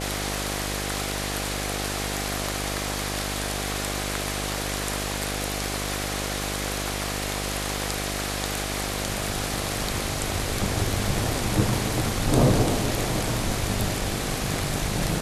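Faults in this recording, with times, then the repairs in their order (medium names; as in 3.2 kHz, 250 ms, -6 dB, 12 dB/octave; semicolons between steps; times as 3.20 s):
buzz 50 Hz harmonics 16 -32 dBFS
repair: de-hum 50 Hz, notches 16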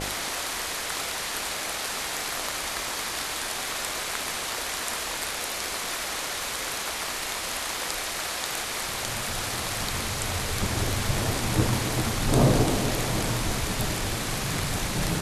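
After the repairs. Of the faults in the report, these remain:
nothing left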